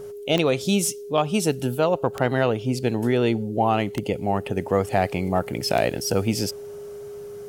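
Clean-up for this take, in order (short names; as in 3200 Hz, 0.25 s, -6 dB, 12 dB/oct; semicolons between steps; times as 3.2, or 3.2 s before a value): de-click; notch 410 Hz, Q 30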